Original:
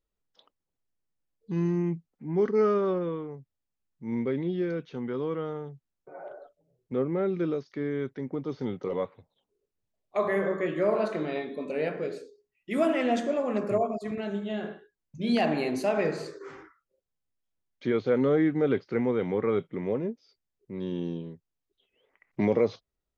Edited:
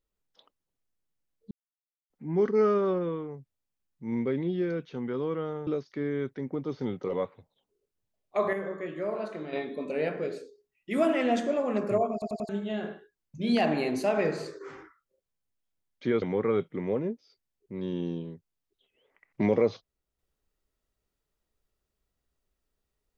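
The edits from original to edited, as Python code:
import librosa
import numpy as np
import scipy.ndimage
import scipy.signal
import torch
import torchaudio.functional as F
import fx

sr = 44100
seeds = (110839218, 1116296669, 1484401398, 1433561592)

y = fx.edit(x, sr, fx.silence(start_s=1.51, length_s=0.59),
    fx.cut(start_s=5.67, length_s=1.8),
    fx.clip_gain(start_s=10.33, length_s=1.0, db=-7.0),
    fx.stutter_over(start_s=13.93, slice_s=0.09, count=4),
    fx.cut(start_s=18.02, length_s=1.19), tone=tone)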